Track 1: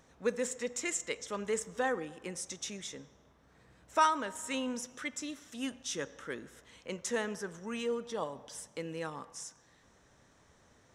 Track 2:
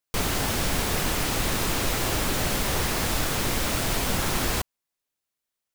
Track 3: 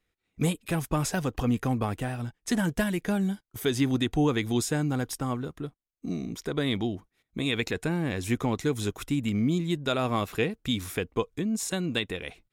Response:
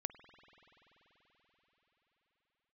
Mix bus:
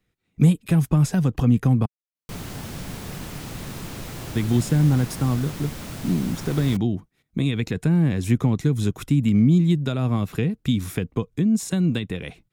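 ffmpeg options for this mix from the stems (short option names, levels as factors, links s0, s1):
-filter_complex "[1:a]adelay=2150,volume=0.251[s0];[2:a]acrossover=split=240[s1][s2];[s2]acompressor=threshold=0.0282:ratio=5[s3];[s1][s3]amix=inputs=2:normalize=0,volume=1.26,asplit=3[s4][s5][s6];[s4]atrim=end=1.86,asetpts=PTS-STARTPTS,afade=t=out:st=1.856:d=0.004:c=hsin[s7];[s5]atrim=start=1.86:end=4.35,asetpts=PTS-STARTPTS,volume=0[s8];[s6]atrim=start=4.35,asetpts=PTS-STARTPTS,afade=t=in:d=0.004:c=hsin[s9];[s7][s8][s9]concat=n=3:v=0:a=1[s10];[s0][s10]amix=inputs=2:normalize=0,equalizer=f=150:w=0.82:g=11"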